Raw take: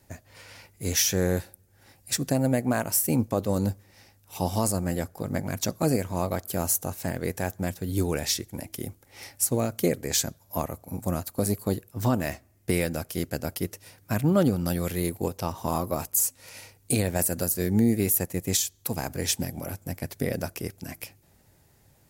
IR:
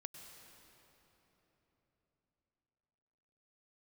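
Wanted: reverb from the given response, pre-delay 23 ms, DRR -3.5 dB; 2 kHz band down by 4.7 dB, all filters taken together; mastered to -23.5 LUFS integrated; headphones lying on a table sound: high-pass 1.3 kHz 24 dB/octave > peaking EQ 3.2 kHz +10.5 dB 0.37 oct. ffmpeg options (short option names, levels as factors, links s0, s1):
-filter_complex "[0:a]equalizer=f=2000:t=o:g=-7,asplit=2[s0][s1];[1:a]atrim=start_sample=2205,adelay=23[s2];[s1][s2]afir=irnorm=-1:irlink=0,volume=2.51[s3];[s0][s3]amix=inputs=2:normalize=0,highpass=f=1300:w=0.5412,highpass=f=1300:w=1.3066,equalizer=f=3200:t=o:w=0.37:g=10.5,volume=1.41"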